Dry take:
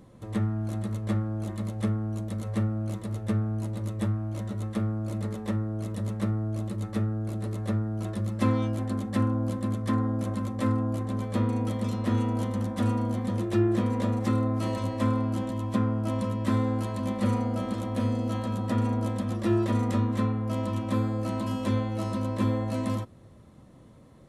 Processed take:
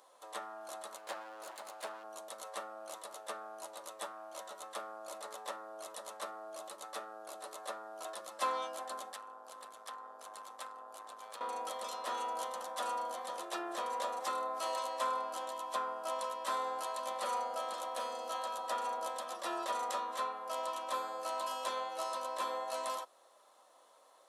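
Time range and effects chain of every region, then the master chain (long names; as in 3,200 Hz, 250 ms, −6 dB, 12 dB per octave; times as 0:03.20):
0:00.96–0:02.04: lower of the sound and its delayed copy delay 0.43 ms + bass and treble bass −3 dB, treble −2 dB
0:09.12–0:11.41: parametric band 440 Hz −7 dB 1.1 octaves + downward compressor 10 to 1, threshold −30 dBFS + tube saturation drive 28 dB, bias 0.65
whole clip: high-pass filter 680 Hz 24 dB per octave; parametric band 2,100 Hz −9 dB 0.78 octaves; level +2.5 dB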